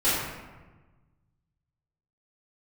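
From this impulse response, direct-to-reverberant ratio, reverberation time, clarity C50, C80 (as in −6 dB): −14.5 dB, 1.3 s, −1.5 dB, 1.5 dB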